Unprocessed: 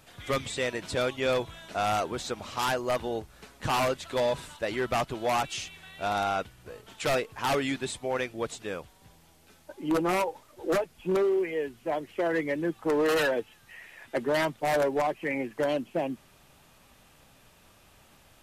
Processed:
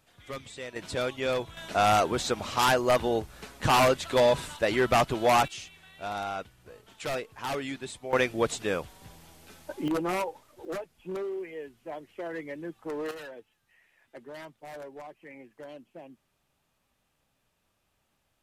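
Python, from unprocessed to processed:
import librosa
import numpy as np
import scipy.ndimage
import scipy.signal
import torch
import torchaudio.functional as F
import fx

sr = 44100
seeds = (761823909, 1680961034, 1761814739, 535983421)

y = fx.gain(x, sr, db=fx.steps((0.0, -10.0), (0.76, -2.0), (1.57, 5.0), (5.48, -5.5), (8.13, 6.0), (9.88, -3.0), (10.65, -9.0), (13.11, -17.0)))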